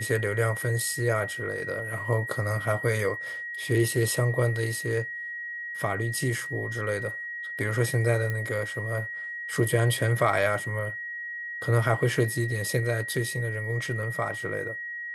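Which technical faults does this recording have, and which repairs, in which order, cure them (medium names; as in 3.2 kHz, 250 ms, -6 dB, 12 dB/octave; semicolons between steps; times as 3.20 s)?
whine 1.9 kHz -33 dBFS
8.30 s: pop -18 dBFS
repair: de-click; band-stop 1.9 kHz, Q 30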